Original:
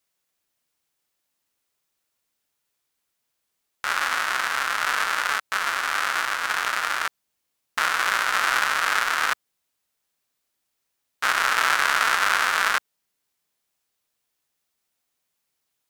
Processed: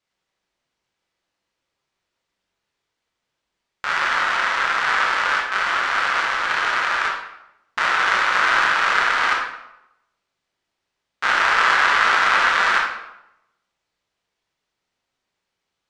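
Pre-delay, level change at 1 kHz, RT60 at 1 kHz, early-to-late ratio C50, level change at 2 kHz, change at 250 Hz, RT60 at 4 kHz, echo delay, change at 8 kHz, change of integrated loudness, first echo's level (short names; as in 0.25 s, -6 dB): 20 ms, +5.0 dB, 0.85 s, 2.5 dB, +4.5 dB, +5.5 dB, 0.60 s, none, -5.0 dB, +4.5 dB, none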